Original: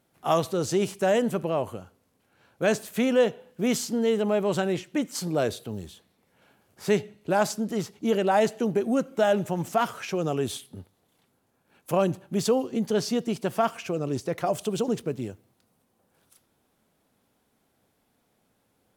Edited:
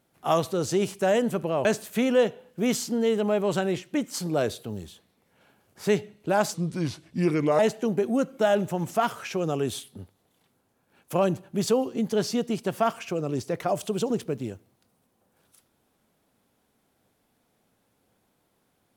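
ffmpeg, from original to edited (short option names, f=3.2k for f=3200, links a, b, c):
-filter_complex "[0:a]asplit=4[a][b][c][d];[a]atrim=end=1.652[e];[b]atrim=start=2.658:end=7.554[f];[c]atrim=start=7.55:end=8.37,asetpts=PTS-STARTPTS,asetrate=34398,aresample=44100[g];[d]atrim=start=8.366[h];[e][f]acrossfade=d=0.004:c1=hsin:c2=hsin[i];[i][g]acrossfade=d=0.004:c1=hsin:c2=hsin[j];[j][h]acrossfade=d=0.004:c1=hsin:c2=hsin"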